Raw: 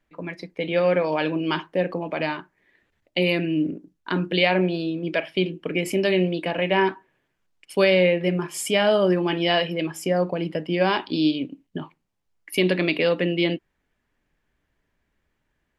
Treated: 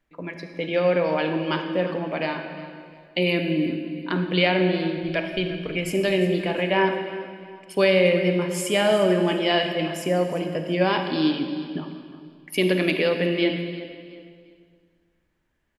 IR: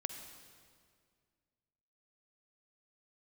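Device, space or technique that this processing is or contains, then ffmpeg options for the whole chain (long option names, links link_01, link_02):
stairwell: -filter_complex "[0:a]asplit=3[link_01][link_02][link_03];[link_01]afade=type=out:start_time=4.96:duration=0.02[link_04];[link_02]asubboost=boost=10.5:cutoff=78,afade=type=in:start_time=4.96:duration=0.02,afade=type=out:start_time=5.89:duration=0.02[link_05];[link_03]afade=type=in:start_time=5.89:duration=0.02[link_06];[link_04][link_05][link_06]amix=inputs=3:normalize=0[link_07];[1:a]atrim=start_sample=2205[link_08];[link_07][link_08]afir=irnorm=-1:irlink=0,aecho=1:1:353|706|1059:0.158|0.0475|0.0143"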